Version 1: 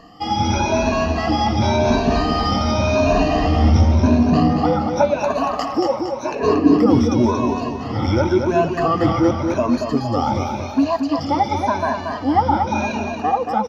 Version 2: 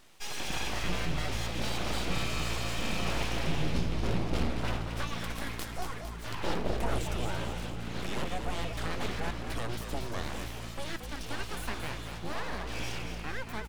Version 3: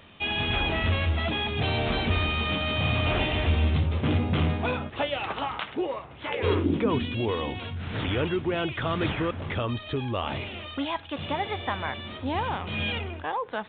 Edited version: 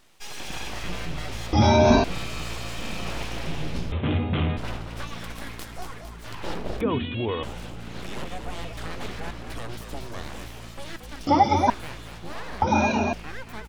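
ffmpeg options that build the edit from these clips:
-filter_complex "[0:a]asplit=3[s0][s1][s2];[2:a]asplit=2[s3][s4];[1:a]asplit=6[s5][s6][s7][s8][s9][s10];[s5]atrim=end=1.532[s11];[s0]atrim=start=1.528:end=2.042[s12];[s6]atrim=start=2.038:end=3.922[s13];[s3]atrim=start=3.918:end=4.572[s14];[s7]atrim=start=4.568:end=6.812[s15];[s4]atrim=start=6.808:end=7.432[s16];[s8]atrim=start=7.428:end=11.272[s17];[s1]atrim=start=11.268:end=11.702[s18];[s9]atrim=start=11.698:end=12.622[s19];[s2]atrim=start=12.618:end=13.132[s20];[s10]atrim=start=13.128[s21];[s11][s12]acrossfade=d=0.004:c1=hsin:c2=hsin[s22];[s22][s13]acrossfade=d=0.004:c1=hsin:c2=hsin[s23];[s23][s14]acrossfade=d=0.004:c1=hsin:c2=hsin[s24];[s24][s15]acrossfade=d=0.004:c1=hsin:c2=hsin[s25];[s25][s16]acrossfade=d=0.004:c1=hsin:c2=hsin[s26];[s26][s17]acrossfade=d=0.004:c1=hsin:c2=hsin[s27];[s27][s18]acrossfade=d=0.004:c1=hsin:c2=hsin[s28];[s28][s19]acrossfade=d=0.004:c1=hsin:c2=hsin[s29];[s29][s20]acrossfade=d=0.004:c1=hsin:c2=hsin[s30];[s30][s21]acrossfade=d=0.004:c1=hsin:c2=hsin"

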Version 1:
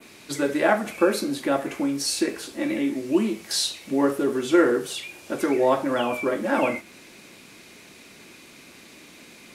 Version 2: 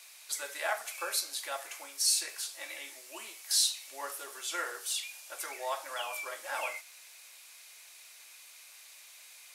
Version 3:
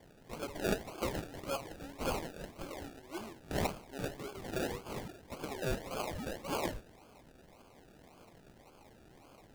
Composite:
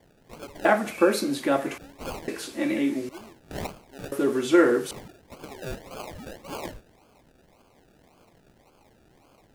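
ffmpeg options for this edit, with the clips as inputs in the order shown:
-filter_complex "[0:a]asplit=3[s0][s1][s2];[2:a]asplit=4[s3][s4][s5][s6];[s3]atrim=end=0.652[s7];[s0]atrim=start=0.648:end=1.782[s8];[s4]atrim=start=1.778:end=2.282[s9];[s1]atrim=start=2.278:end=3.092[s10];[s5]atrim=start=3.088:end=4.122[s11];[s2]atrim=start=4.118:end=4.912[s12];[s6]atrim=start=4.908[s13];[s7][s8]acrossfade=d=0.004:c1=hsin:c2=hsin[s14];[s14][s9]acrossfade=d=0.004:c1=hsin:c2=hsin[s15];[s15][s10]acrossfade=d=0.004:c1=hsin:c2=hsin[s16];[s16][s11]acrossfade=d=0.004:c1=hsin:c2=hsin[s17];[s17][s12]acrossfade=d=0.004:c1=hsin:c2=hsin[s18];[s18][s13]acrossfade=d=0.004:c1=hsin:c2=hsin"

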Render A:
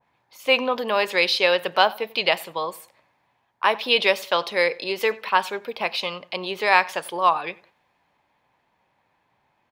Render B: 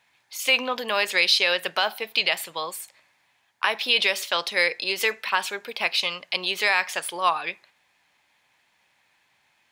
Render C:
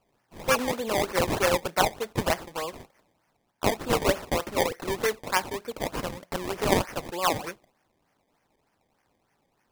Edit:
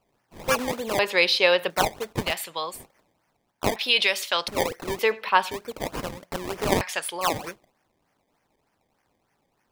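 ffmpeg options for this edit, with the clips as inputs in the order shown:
-filter_complex "[0:a]asplit=2[s0][s1];[1:a]asplit=3[s2][s3][s4];[2:a]asplit=6[s5][s6][s7][s8][s9][s10];[s5]atrim=end=0.992[s11];[s0]atrim=start=0.988:end=1.702[s12];[s6]atrim=start=1.698:end=2.37[s13];[s2]atrim=start=2.21:end=2.85[s14];[s7]atrim=start=2.69:end=3.762[s15];[s3]atrim=start=3.758:end=4.482[s16];[s8]atrim=start=4.478:end=4.992[s17];[s1]atrim=start=4.988:end=5.512[s18];[s9]atrim=start=5.508:end=6.812[s19];[s4]atrim=start=6.808:end=7.212[s20];[s10]atrim=start=7.208[s21];[s11][s12]acrossfade=d=0.004:c1=hsin:c2=hsin[s22];[s22][s13]acrossfade=d=0.004:c1=hsin:c2=hsin[s23];[s23][s14]acrossfade=d=0.16:c1=tri:c2=tri[s24];[s24][s15]acrossfade=d=0.16:c1=tri:c2=tri[s25];[s25][s16]acrossfade=d=0.004:c1=hsin:c2=hsin[s26];[s26][s17]acrossfade=d=0.004:c1=hsin:c2=hsin[s27];[s27][s18]acrossfade=d=0.004:c1=hsin:c2=hsin[s28];[s28][s19]acrossfade=d=0.004:c1=hsin:c2=hsin[s29];[s29][s20]acrossfade=d=0.004:c1=hsin:c2=hsin[s30];[s30][s21]acrossfade=d=0.004:c1=hsin:c2=hsin"

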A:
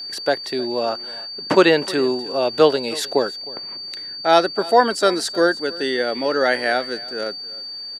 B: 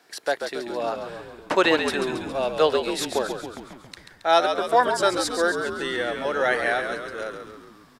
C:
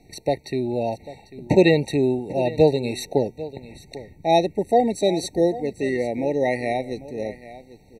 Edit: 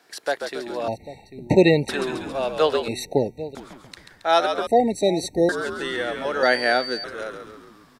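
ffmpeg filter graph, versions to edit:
-filter_complex "[2:a]asplit=3[s0][s1][s2];[1:a]asplit=5[s3][s4][s5][s6][s7];[s3]atrim=end=0.882[s8];[s0]atrim=start=0.878:end=1.892[s9];[s4]atrim=start=1.888:end=2.882[s10];[s1]atrim=start=2.878:end=3.552[s11];[s5]atrim=start=3.548:end=4.672[s12];[s2]atrim=start=4.668:end=5.492[s13];[s6]atrim=start=5.488:end=6.432[s14];[0:a]atrim=start=6.428:end=7.042[s15];[s7]atrim=start=7.038[s16];[s8][s9]acrossfade=d=0.004:c1=hsin:c2=hsin[s17];[s17][s10]acrossfade=d=0.004:c1=hsin:c2=hsin[s18];[s18][s11]acrossfade=d=0.004:c1=hsin:c2=hsin[s19];[s19][s12]acrossfade=d=0.004:c1=hsin:c2=hsin[s20];[s20][s13]acrossfade=d=0.004:c1=hsin:c2=hsin[s21];[s21][s14]acrossfade=d=0.004:c1=hsin:c2=hsin[s22];[s22][s15]acrossfade=d=0.004:c1=hsin:c2=hsin[s23];[s23][s16]acrossfade=d=0.004:c1=hsin:c2=hsin"

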